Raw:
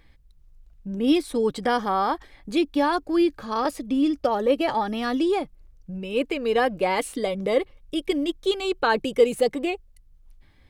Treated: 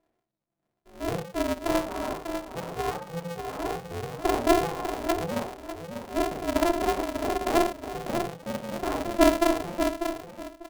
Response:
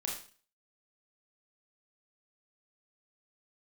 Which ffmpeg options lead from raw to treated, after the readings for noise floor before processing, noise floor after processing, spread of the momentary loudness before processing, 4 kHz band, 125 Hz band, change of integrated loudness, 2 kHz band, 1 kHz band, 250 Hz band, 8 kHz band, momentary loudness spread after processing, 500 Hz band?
-55 dBFS, -81 dBFS, 8 LU, -5.0 dB, +3.0 dB, -4.0 dB, -4.5 dB, -3.0 dB, -4.5 dB, +3.0 dB, 12 LU, -4.0 dB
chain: -filter_complex "[0:a]bandpass=f=510:t=q:w=5.3:csg=0,aecho=1:1:595|1190|1785:0.447|0.0938|0.0197[a];[1:a]atrim=start_sample=2205,atrim=end_sample=6174,asetrate=42777,aresample=44100[b];[a][b]afir=irnorm=-1:irlink=0,aeval=exprs='val(0)*sgn(sin(2*PI*170*n/s))':c=same"

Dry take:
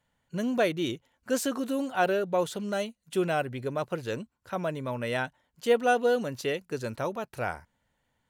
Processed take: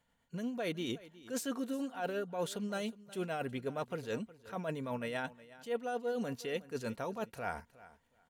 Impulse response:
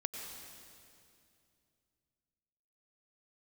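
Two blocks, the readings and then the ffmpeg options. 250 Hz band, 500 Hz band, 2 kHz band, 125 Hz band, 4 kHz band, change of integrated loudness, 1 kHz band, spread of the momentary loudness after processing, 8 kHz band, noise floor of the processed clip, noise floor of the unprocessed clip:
-7.0 dB, -10.0 dB, -10.0 dB, -7.5 dB, -7.5 dB, -9.0 dB, -10.5 dB, 5 LU, -7.5 dB, -75 dBFS, -77 dBFS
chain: -af "aecho=1:1:4.3:0.33,areverse,acompressor=threshold=-33dB:ratio=6,areverse,tremolo=f=8.7:d=0.35,aecho=1:1:364|728:0.119|0.0214"

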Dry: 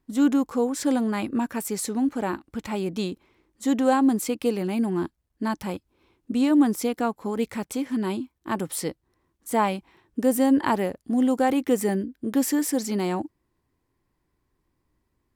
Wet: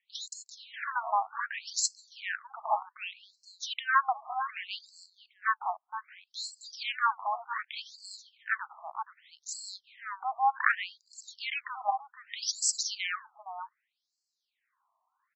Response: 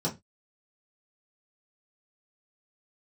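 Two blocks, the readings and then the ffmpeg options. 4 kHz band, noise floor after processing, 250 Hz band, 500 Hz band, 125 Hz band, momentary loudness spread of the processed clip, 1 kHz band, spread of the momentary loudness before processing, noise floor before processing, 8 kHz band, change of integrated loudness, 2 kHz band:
+2.5 dB, -85 dBFS, under -40 dB, -21.0 dB, under -40 dB, 16 LU, -1.0 dB, 11 LU, -75 dBFS, -1.0 dB, -8.0 dB, +4.0 dB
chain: -filter_complex "[0:a]asplit=2[a][b];[b]adelay=472.3,volume=-12dB,highshelf=f=4k:g=-10.6[c];[a][c]amix=inputs=2:normalize=0,afftfilt=real='re*between(b*sr/1024,880*pow(5900/880,0.5+0.5*sin(2*PI*0.65*pts/sr))/1.41,880*pow(5900/880,0.5+0.5*sin(2*PI*0.65*pts/sr))*1.41)':imag='im*between(b*sr/1024,880*pow(5900/880,0.5+0.5*sin(2*PI*0.65*pts/sr))/1.41,880*pow(5900/880,0.5+0.5*sin(2*PI*0.65*pts/sr))*1.41)':win_size=1024:overlap=0.75,volume=7.5dB"

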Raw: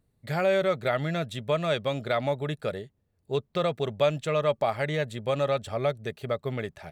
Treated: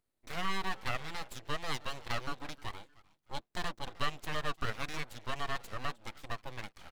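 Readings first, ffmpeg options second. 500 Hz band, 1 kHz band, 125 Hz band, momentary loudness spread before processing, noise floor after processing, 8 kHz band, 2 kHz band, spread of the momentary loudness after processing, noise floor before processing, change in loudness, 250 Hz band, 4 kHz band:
-20.0 dB, -6.5 dB, -13.0 dB, 8 LU, -81 dBFS, n/a, -5.0 dB, 10 LU, -73 dBFS, -11.0 dB, -13.0 dB, -4.0 dB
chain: -filter_complex "[0:a]lowshelf=f=370:g=-11.5,asplit=3[a][b][c];[b]adelay=308,afreqshift=82,volume=-22dB[d];[c]adelay=616,afreqshift=164,volume=-31.6dB[e];[a][d][e]amix=inputs=3:normalize=0,aeval=exprs='abs(val(0))':c=same,volume=-4dB"

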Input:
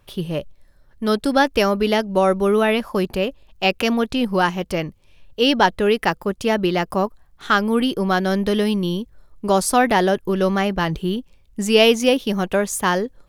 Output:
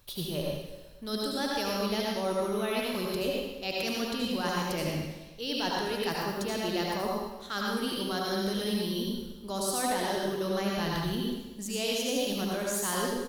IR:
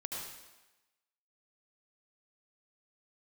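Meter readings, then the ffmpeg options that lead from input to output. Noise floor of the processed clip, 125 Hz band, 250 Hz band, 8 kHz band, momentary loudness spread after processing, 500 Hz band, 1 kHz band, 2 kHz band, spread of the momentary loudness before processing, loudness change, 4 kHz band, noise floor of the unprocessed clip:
-45 dBFS, -10.5 dB, -11.5 dB, -5.0 dB, 6 LU, -12.5 dB, -13.0 dB, -13.0 dB, 10 LU, -11.5 dB, -8.0 dB, -54 dBFS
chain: -filter_complex "[0:a]aexciter=amount=2.4:drive=7.2:freq=5.4k,equalizer=f=4k:w=3.4:g=14,areverse,acompressor=threshold=-29dB:ratio=6,areverse,aecho=1:1:120|240|360|480|600:0.119|0.0701|0.0414|0.0244|0.0144[a];[1:a]atrim=start_sample=2205[b];[a][b]afir=irnorm=-1:irlink=0"

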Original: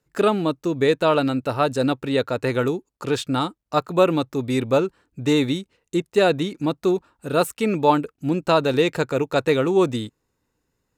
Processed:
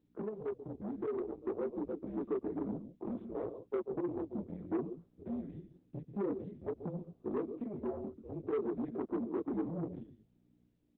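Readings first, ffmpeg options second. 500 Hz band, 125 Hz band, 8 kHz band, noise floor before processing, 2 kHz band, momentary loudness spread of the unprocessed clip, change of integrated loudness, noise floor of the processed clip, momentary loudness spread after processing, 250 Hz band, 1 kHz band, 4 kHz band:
-18.0 dB, -19.0 dB, under -40 dB, -76 dBFS, -31.0 dB, 7 LU, -18.0 dB, -72 dBFS, 7 LU, -15.5 dB, -25.0 dB, under -40 dB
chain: -af "alimiter=limit=-12.5dB:level=0:latency=1:release=31,afreqshift=-210,lowpass=f=420:t=q:w=4.4,acompressor=threshold=-23dB:ratio=10,aecho=1:1:138:0.251,aeval=exprs='val(0)+0.00178*(sin(2*PI*60*n/s)+sin(2*PI*2*60*n/s)/2+sin(2*PI*3*60*n/s)/3+sin(2*PI*4*60*n/s)/4+sin(2*PI*5*60*n/s)/5)':c=same,flanger=delay=17:depth=7.8:speed=0.57,aresample=16000,asoftclip=type=tanh:threshold=-28.5dB,aresample=44100,highpass=230,dynaudnorm=f=520:g=5:m=4dB,volume=-4dB" -ar 48000 -c:a libopus -b:a 8k

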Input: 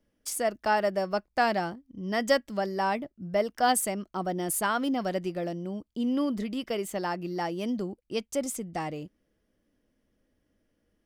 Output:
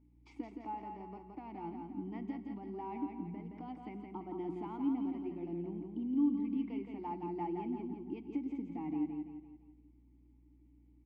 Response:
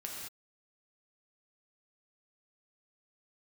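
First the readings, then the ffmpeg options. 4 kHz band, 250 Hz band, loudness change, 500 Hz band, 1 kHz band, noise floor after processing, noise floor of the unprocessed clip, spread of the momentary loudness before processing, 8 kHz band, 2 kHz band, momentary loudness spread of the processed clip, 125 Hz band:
under -25 dB, -4.5 dB, -10.0 dB, -16.5 dB, -15.0 dB, -64 dBFS, -76 dBFS, 9 LU, under -40 dB, under -25 dB, 12 LU, -9.5 dB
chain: -filter_complex "[0:a]lowpass=3.9k,aemphasis=mode=reproduction:type=bsi,bandreject=f=60:t=h:w=6,bandreject=f=120:t=h:w=6,bandreject=f=180:t=h:w=6,acompressor=threshold=-31dB:ratio=6,alimiter=level_in=5dB:limit=-24dB:level=0:latency=1:release=473,volume=-5dB,asplit=3[a][b][c];[a]bandpass=f=300:t=q:w=8,volume=0dB[d];[b]bandpass=f=870:t=q:w=8,volume=-6dB[e];[c]bandpass=f=2.24k:t=q:w=8,volume=-9dB[f];[d][e][f]amix=inputs=3:normalize=0,aeval=exprs='val(0)+0.000224*(sin(2*PI*60*n/s)+sin(2*PI*2*60*n/s)/2+sin(2*PI*3*60*n/s)/3+sin(2*PI*4*60*n/s)/4+sin(2*PI*5*60*n/s)/5)':c=same,aecho=1:1:169|338|507|676|845:0.562|0.247|0.109|0.0479|0.0211,asplit=2[g][h];[1:a]atrim=start_sample=2205,asetrate=42336,aresample=44100[i];[h][i]afir=irnorm=-1:irlink=0,volume=-10dB[j];[g][j]amix=inputs=2:normalize=0,volume=6.5dB"

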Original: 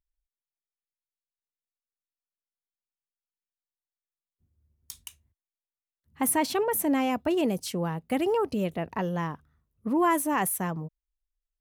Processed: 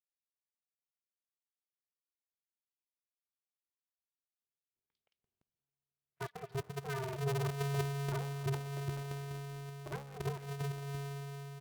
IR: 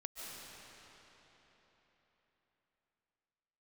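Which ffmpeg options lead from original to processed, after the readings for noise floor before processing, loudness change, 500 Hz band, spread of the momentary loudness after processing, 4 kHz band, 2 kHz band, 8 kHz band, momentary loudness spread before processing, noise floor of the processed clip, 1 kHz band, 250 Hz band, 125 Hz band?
under -85 dBFS, -12.0 dB, -12.5 dB, 10 LU, -9.0 dB, -10.5 dB, -18.5 dB, 19 LU, under -85 dBFS, -15.5 dB, -17.5 dB, +1.0 dB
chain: -filter_complex "[0:a]equalizer=f=3.1k:t=o:w=1.7:g=-13,acompressor=threshold=-42dB:ratio=2.5,asplit=3[a][b][c];[a]bandpass=f=270:t=q:w=8,volume=0dB[d];[b]bandpass=f=2.29k:t=q:w=8,volume=-6dB[e];[c]bandpass=f=3.01k:t=q:w=8,volume=-9dB[f];[d][e][f]amix=inputs=3:normalize=0,aeval=exprs='0.0211*(cos(1*acos(clip(val(0)/0.0211,-1,1)))-cos(1*PI/2))+0.00422*(cos(6*acos(clip(val(0)/0.0211,-1,1)))-cos(6*PI/2))+0.00266*(cos(7*acos(clip(val(0)/0.0211,-1,1)))-cos(7*PI/2))':c=same,acrossover=split=300|2700[g][h][i];[i]adelay=50[j];[g]adelay=340[k];[k][h][j]amix=inputs=3:normalize=0,asplit=2[l][m];[1:a]atrim=start_sample=2205[n];[m][n]afir=irnorm=-1:irlink=0,volume=-11.5dB[o];[l][o]amix=inputs=2:normalize=0,aresample=11025,aresample=44100,aeval=exprs='val(0)*sgn(sin(2*PI*140*n/s))':c=same,volume=5.5dB"

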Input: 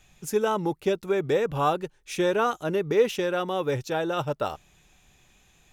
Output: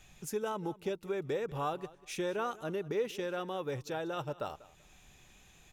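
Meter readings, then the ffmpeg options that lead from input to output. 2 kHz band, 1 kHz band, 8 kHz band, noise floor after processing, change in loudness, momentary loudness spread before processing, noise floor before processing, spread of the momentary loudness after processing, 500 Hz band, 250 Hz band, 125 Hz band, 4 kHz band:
-10.5 dB, -10.5 dB, -7.5 dB, -61 dBFS, -10.5 dB, 7 LU, -61 dBFS, 6 LU, -11.0 dB, -10.0 dB, -9.5 dB, -10.0 dB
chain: -af "acompressor=threshold=-52dB:ratio=1.5,aecho=1:1:192|384:0.106|0.0244"

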